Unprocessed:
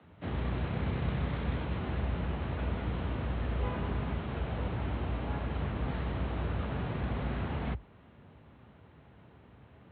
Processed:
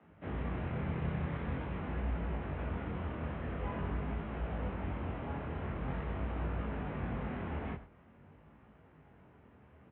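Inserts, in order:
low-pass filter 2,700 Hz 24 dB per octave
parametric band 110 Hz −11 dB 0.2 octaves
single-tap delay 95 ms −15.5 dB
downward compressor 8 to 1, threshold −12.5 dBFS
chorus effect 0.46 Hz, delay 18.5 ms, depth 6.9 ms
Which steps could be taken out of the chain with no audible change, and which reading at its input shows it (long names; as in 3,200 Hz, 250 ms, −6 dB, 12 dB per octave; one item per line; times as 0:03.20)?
downward compressor, threshold −12.5 dBFS: peak of its input −21.0 dBFS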